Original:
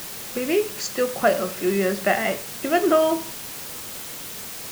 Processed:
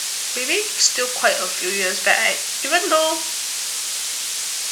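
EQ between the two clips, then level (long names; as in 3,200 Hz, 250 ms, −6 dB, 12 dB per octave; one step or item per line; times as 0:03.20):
meter weighting curve ITU-R 468
+3.0 dB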